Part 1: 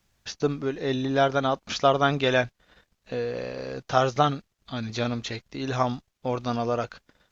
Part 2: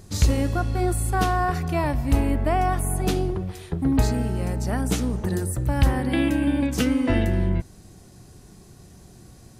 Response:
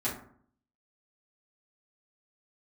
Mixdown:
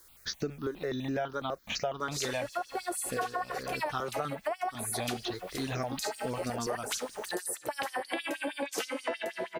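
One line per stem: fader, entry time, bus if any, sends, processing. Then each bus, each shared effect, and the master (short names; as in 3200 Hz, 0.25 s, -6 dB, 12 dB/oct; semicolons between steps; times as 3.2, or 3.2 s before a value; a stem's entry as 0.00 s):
+3.0 dB, 0.00 s, no send, bell 100 Hz -5 dB 1.2 oct; requantised 10-bit, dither triangular; step phaser 12 Hz 710–3400 Hz
+1.5 dB, 2.00 s, no send, low shelf 130 Hz -11.5 dB; LFO high-pass sine 6.3 Hz 450–5800 Hz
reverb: off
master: compressor 6:1, threshold -31 dBFS, peak gain reduction 16.5 dB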